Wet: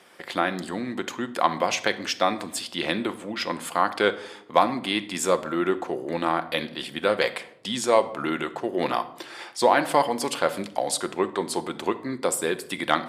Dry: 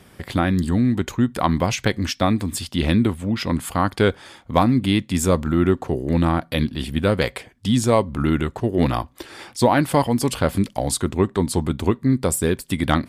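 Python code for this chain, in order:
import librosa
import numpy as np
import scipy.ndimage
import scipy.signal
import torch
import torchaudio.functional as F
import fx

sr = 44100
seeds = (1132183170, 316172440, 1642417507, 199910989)

y = scipy.signal.sosfilt(scipy.signal.butter(2, 470.0, 'highpass', fs=sr, output='sos'), x)
y = fx.high_shelf(y, sr, hz=11000.0, db=-11.5)
y = fx.room_shoebox(y, sr, seeds[0], volume_m3=1900.0, walls='furnished', distance_m=0.84)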